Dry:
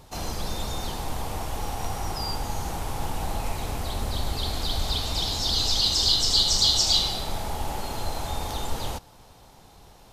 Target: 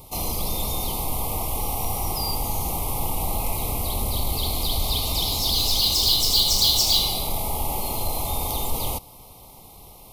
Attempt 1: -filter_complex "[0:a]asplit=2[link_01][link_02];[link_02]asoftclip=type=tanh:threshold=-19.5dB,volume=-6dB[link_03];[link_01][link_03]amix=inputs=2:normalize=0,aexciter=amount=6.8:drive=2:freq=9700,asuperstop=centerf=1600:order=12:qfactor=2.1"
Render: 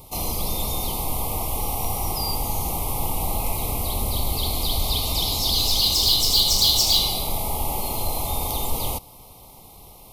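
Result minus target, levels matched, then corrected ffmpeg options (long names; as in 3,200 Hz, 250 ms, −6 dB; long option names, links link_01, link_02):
soft clipping: distortion −5 dB
-filter_complex "[0:a]asplit=2[link_01][link_02];[link_02]asoftclip=type=tanh:threshold=-26dB,volume=-6dB[link_03];[link_01][link_03]amix=inputs=2:normalize=0,aexciter=amount=6.8:drive=2:freq=9700,asuperstop=centerf=1600:order=12:qfactor=2.1"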